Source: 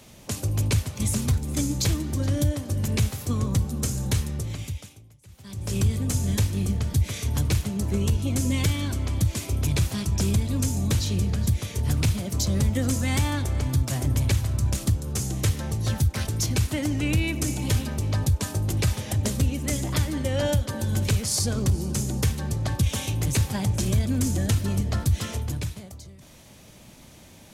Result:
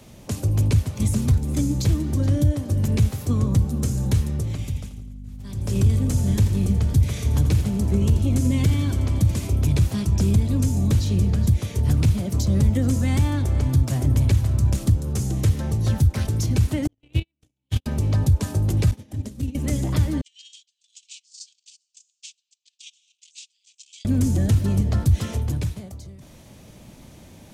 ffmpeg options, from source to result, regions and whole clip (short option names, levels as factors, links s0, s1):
-filter_complex "[0:a]asettb=1/sr,asplit=3[s0][s1][s2];[s0]atrim=end=4.584[s3];[s1]atrim=start=4.58:end=9.48,asetpts=PTS-STARTPTS,afade=t=in:d=0.004:c=qsin,afade=t=out:st=4.896:d=0.004:c=qsin,agate=range=0.0224:threshold=0.00398:ratio=3:release=100:detection=peak,aeval=exprs='val(0)+0.01*(sin(2*PI*50*n/s)+sin(2*PI*2*50*n/s)/2+sin(2*PI*3*50*n/s)/3+sin(2*PI*4*50*n/s)/4+sin(2*PI*5*50*n/s)/5)':c=same,aecho=1:1:84|168|252|336|420|504:0.266|0.138|0.0719|0.0374|0.0195|0.0101,atrim=end_sample=216090[s4];[s2]atrim=start=9.476[s5];[s3][s4]acrossfade=d=0.004:c1=hsin:c2=qsin[s6];[s6][s5]acrossfade=d=0.004:c1=qsin:c2=hsin,asettb=1/sr,asplit=3[s7][s8][s9];[s7]atrim=end=16.874[s10];[s8]atrim=start=16.87:end=17.86,asetpts=PTS-STARTPTS,afade=t=in:d=0.004:c=qsin,afade=t=out:st=0.986:d=0.004:c=qsin,agate=range=0.00112:threshold=0.1:ratio=16:release=100:detection=peak,equalizer=f=3300:t=o:w=0.7:g=13[s11];[s9]atrim=start=17.856[s12];[s10][s11]acrossfade=d=0.004:c1=hsin:c2=qsin[s13];[s13][s12]acrossfade=d=0.004:c1=qsin:c2=hsin,asettb=1/sr,asplit=3[s14][s15][s16];[s14]atrim=end=18.914[s17];[s15]atrim=start=18.91:end=19.55,asetpts=PTS-STARTPTS,afade=t=in:d=0.004:c=qsin,afade=t=out:st=0.636:d=0.004:c=qsin,acrossover=split=98|1900[s18][s19][s20];[s18]acompressor=threshold=0.0398:ratio=4[s21];[s19]acompressor=threshold=0.0224:ratio=4[s22];[s20]acompressor=threshold=0.0251:ratio=4[s23];[s21][s22][s23]amix=inputs=3:normalize=0,agate=range=0.0224:threshold=0.0794:ratio=3:release=100:detection=peak,equalizer=f=270:t=o:w=0.77:g=11.5[s24];[s16]atrim=start=19.546[s25];[s17][s24]acrossfade=d=0.004:c1=hsin:c2=qsin[s26];[s26][s25]acrossfade=d=0.004:c1=qsin:c2=hsin,asettb=1/sr,asplit=3[s27][s28][s29];[s27]atrim=end=20.214[s30];[s28]atrim=start=20.21:end=24.05,asetpts=PTS-STARTPTS,afade=t=in:d=0.004:c=qsin,afade=t=out:st=3.836:d=0.004:c=qsin,agate=range=0.0447:threshold=0.0708:ratio=16:release=100:detection=peak,asuperpass=centerf=4700:order=12:qfactor=0.86[s31];[s29]atrim=start=24.046[s32];[s30][s31]acrossfade=d=0.004:c1=hsin:c2=qsin[s33];[s33][s32]acrossfade=d=0.004:c1=qsin:c2=hsin,acontrast=27,tiltshelf=f=810:g=3.5,acrossover=split=360[s34][s35];[s35]acompressor=threshold=0.0355:ratio=2[s36];[s34][s36]amix=inputs=2:normalize=0,volume=0.668"